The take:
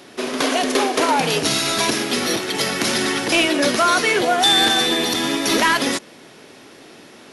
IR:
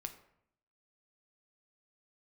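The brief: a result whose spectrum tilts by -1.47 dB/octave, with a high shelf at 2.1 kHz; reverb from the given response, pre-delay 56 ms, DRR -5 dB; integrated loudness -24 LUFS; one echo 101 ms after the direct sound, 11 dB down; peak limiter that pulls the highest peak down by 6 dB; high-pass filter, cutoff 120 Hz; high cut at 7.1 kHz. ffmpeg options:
-filter_complex "[0:a]highpass=120,lowpass=7100,highshelf=f=2100:g=7,alimiter=limit=0.398:level=0:latency=1,aecho=1:1:101:0.282,asplit=2[s0][s1];[1:a]atrim=start_sample=2205,adelay=56[s2];[s1][s2]afir=irnorm=-1:irlink=0,volume=2.37[s3];[s0][s3]amix=inputs=2:normalize=0,volume=0.224"

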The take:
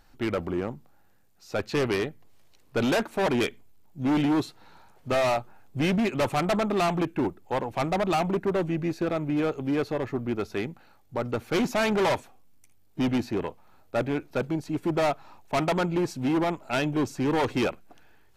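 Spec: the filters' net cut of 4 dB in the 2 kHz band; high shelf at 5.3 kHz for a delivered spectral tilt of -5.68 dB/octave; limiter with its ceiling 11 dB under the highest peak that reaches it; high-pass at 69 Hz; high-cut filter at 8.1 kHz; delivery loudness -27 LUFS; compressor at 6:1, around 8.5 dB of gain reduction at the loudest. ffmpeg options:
-af "highpass=69,lowpass=8100,equalizer=f=2000:t=o:g=-6.5,highshelf=f=5300:g=7.5,acompressor=threshold=0.0282:ratio=6,volume=4.73,alimiter=limit=0.126:level=0:latency=1"

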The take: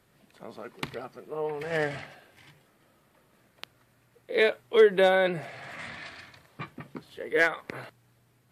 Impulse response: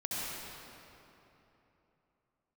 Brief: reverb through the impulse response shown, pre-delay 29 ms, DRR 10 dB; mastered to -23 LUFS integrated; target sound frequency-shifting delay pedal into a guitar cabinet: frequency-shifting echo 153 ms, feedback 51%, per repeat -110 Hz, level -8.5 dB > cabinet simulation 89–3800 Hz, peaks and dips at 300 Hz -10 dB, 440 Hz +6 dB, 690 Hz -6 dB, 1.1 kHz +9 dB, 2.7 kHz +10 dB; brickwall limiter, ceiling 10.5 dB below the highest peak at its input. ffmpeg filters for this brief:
-filter_complex "[0:a]alimiter=limit=0.1:level=0:latency=1,asplit=2[s0][s1];[1:a]atrim=start_sample=2205,adelay=29[s2];[s1][s2]afir=irnorm=-1:irlink=0,volume=0.178[s3];[s0][s3]amix=inputs=2:normalize=0,asplit=7[s4][s5][s6][s7][s8][s9][s10];[s5]adelay=153,afreqshift=-110,volume=0.376[s11];[s6]adelay=306,afreqshift=-220,volume=0.193[s12];[s7]adelay=459,afreqshift=-330,volume=0.0977[s13];[s8]adelay=612,afreqshift=-440,volume=0.0501[s14];[s9]adelay=765,afreqshift=-550,volume=0.0254[s15];[s10]adelay=918,afreqshift=-660,volume=0.013[s16];[s4][s11][s12][s13][s14][s15][s16]amix=inputs=7:normalize=0,highpass=89,equalizer=f=300:t=q:w=4:g=-10,equalizer=f=440:t=q:w=4:g=6,equalizer=f=690:t=q:w=4:g=-6,equalizer=f=1100:t=q:w=4:g=9,equalizer=f=2700:t=q:w=4:g=10,lowpass=f=3800:w=0.5412,lowpass=f=3800:w=1.3066,volume=2.51"

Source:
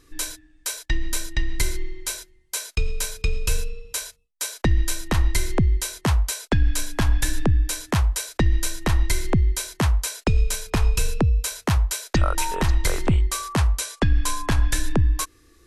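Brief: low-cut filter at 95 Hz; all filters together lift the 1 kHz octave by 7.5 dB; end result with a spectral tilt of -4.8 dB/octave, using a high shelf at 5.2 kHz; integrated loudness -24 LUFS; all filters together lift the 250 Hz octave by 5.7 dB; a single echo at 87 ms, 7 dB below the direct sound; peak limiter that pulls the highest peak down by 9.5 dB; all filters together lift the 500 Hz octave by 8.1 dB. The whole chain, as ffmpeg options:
-af "highpass=95,equalizer=f=250:t=o:g=5.5,equalizer=f=500:t=o:g=7,equalizer=f=1000:t=o:g=7,highshelf=f=5200:g=-8.5,alimiter=limit=0.224:level=0:latency=1,aecho=1:1:87:0.447,volume=1.33"

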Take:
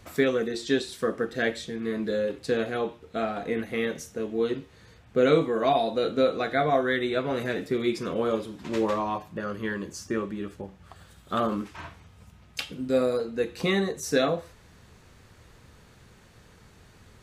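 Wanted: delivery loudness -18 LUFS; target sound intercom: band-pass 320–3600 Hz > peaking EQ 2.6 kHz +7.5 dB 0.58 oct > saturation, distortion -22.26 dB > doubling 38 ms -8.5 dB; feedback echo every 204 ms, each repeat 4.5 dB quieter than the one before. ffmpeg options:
-filter_complex "[0:a]highpass=320,lowpass=3600,equalizer=f=2600:t=o:w=0.58:g=7.5,aecho=1:1:204|408|612|816|1020|1224|1428|1632|1836:0.596|0.357|0.214|0.129|0.0772|0.0463|0.0278|0.0167|0.01,asoftclip=threshold=0.211,asplit=2[s0][s1];[s1]adelay=38,volume=0.376[s2];[s0][s2]amix=inputs=2:normalize=0,volume=2.82"

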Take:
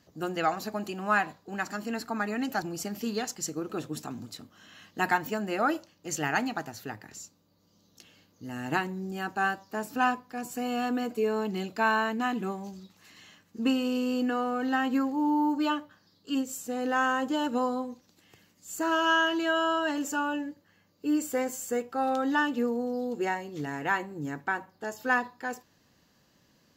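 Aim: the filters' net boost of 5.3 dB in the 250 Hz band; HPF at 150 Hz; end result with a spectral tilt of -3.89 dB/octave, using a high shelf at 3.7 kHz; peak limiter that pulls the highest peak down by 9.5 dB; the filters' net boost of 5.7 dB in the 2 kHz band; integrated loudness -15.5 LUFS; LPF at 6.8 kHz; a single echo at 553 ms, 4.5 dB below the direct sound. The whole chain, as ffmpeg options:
-af "highpass=150,lowpass=6800,equalizer=f=250:t=o:g=6.5,equalizer=f=2000:t=o:g=6,highshelf=f=3700:g=7,alimiter=limit=0.141:level=0:latency=1,aecho=1:1:553:0.596,volume=3.55"

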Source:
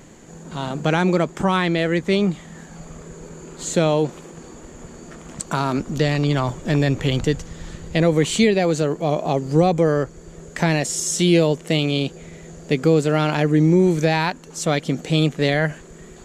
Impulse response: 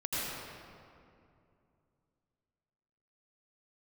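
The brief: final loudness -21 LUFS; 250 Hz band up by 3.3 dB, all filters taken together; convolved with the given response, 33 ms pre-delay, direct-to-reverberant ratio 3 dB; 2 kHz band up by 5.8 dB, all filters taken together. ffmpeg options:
-filter_complex "[0:a]equalizer=f=250:t=o:g=5,equalizer=f=2000:t=o:g=7,asplit=2[s0][s1];[1:a]atrim=start_sample=2205,adelay=33[s2];[s1][s2]afir=irnorm=-1:irlink=0,volume=0.316[s3];[s0][s3]amix=inputs=2:normalize=0,volume=0.531"

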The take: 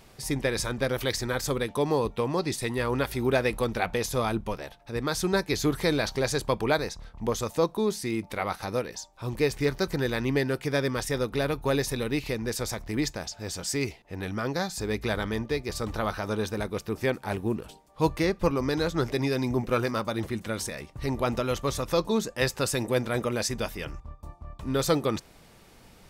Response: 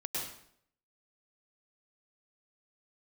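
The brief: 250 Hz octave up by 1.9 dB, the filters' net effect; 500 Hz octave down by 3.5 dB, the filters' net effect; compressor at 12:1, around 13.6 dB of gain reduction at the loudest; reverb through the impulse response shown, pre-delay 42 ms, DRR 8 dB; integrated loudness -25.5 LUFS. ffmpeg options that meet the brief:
-filter_complex "[0:a]equalizer=f=250:t=o:g=4,equalizer=f=500:t=o:g=-5.5,acompressor=threshold=0.02:ratio=12,asplit=2[s0][s1];[1:a]atrim=start_sample=2205,adelay=42[s2];[s1][s2]afir=irnorm=-1:irlink=0,volume=0.282[s3];[s0][s3]amix=inputs=2:normalize=0,volume=4.47"

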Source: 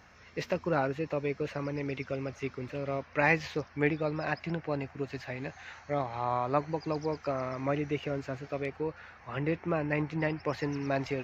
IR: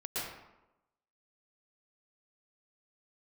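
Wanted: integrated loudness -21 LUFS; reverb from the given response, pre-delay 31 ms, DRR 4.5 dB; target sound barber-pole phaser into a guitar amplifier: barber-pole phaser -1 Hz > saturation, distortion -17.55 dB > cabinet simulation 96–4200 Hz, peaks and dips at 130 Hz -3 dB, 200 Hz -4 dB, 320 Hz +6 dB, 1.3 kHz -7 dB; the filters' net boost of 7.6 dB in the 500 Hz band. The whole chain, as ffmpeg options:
-filter_complex "[0:a]equalizer=f=500:t=o:g=8.5,asplit=2[s0][s1];[1:a]atrim=start_sample=2205,adelay=31[s2];[s1][s2]afir=irnorm=-1:irlink=0,volume=0.376[s3];[s0][s3]amix=inputs=2:normalize=0,asplit=2[s4][s5];[s5]afreqshift=-1[s6];[s4][s6]amix=inputs=2:normalize=1,asoftclip=threshold=0.119,highpass=96,equalizer=f=130:t=q:w=4:g=-3,equalizer=f=200:t=q:w=4:g=-4,equalizer=f=320:t=q:w=4:g=6,equalizer=f=1300:t=q:w=4:g=-7,lowpass=f=4200:w=0.5412,lowpass=f=4200:w=1.3066,volume=2.82"

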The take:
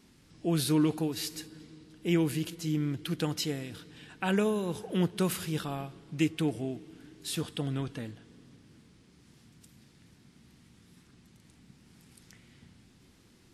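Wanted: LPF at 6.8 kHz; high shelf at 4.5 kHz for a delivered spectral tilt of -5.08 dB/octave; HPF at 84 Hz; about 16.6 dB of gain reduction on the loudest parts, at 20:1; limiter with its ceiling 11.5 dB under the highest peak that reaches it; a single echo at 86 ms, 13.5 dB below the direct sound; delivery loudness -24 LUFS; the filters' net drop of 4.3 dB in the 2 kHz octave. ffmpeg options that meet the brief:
-af "highpass=84,lowpass=6800,equalizer=f=2000:t=o:g=-7,highshelf=f=4500:g=4,acompressor=threshold=0.0126:ratio=20,alimiter=level_in=3.55:limit=0.0631:level=0:latency=1,volume=0.282,aecho=1:1:86:0.211,volume=12.6"

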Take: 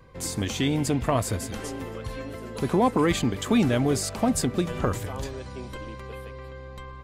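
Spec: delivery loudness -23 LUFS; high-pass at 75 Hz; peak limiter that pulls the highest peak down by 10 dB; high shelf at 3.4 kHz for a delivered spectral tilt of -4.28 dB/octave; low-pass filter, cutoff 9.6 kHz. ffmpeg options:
-af "highpass=75,lowpass=9600,highshelf=f=3400:g=5,volume=2.24,alimiter=limit=0.282:level=0:latency=1"

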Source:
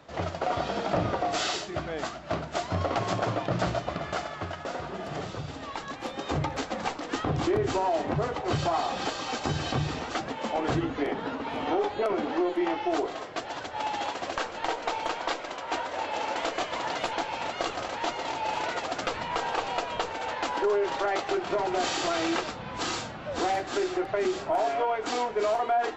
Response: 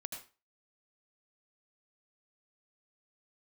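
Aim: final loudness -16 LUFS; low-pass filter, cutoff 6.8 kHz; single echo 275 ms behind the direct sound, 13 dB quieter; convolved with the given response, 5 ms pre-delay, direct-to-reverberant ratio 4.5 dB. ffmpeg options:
-filter_complex "[0:a]lowpass=6800,aecho=1:1:275:0.224,asplit=2[s0][s1];[1:a]atrim=start_sample=2205,adelay=5[s2];[s1][s2]afir=irnorm=-1:irlink=0,volume=0.708[s3];[s0][s3]amix=inputs=2:normalize=0,volume=4.22"

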